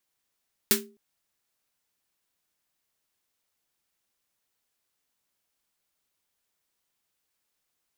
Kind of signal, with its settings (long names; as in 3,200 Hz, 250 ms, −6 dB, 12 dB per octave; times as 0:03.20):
synth snare length 0.26 s, tones 220 Hz, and 400 Hz, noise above 1,200 Hz, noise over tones 9 dB, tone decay 0.38 s, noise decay 0.18 s